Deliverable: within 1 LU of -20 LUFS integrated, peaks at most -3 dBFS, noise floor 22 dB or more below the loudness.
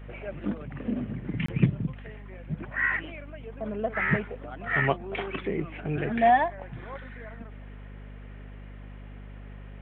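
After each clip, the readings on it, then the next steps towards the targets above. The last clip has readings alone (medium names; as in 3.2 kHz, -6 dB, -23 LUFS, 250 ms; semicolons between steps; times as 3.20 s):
dropouts 1; longest dropout 24 ms; hum 50 Hz; highest harmonic 250 Hz; hum level -40 dBFS; loudness -28.5 LUFS; peak level -7.5 dBFS; loudness target -20.0 LUFS
-> interpolate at 1.46 s, 24 ms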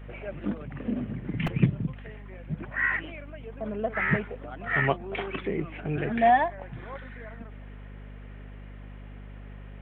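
dropouts 0; hum 50 Hz; highest harmonic 250 Hz; hum level -40 dBFS
-> de-hum 50 Hz, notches 5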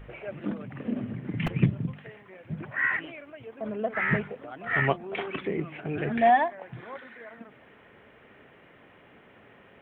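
hum not found; loudness -28.5 LUFS; peak level -8.5 dBFS; loudness target -20.0 LUFS
-> trim +8.5 dB; peak limiter -3 dBFS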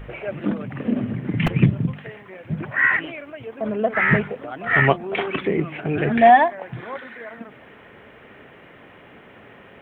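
loudness -20.5 LUFS; peak level -3.0 dBFS; noise floor -47 dBFS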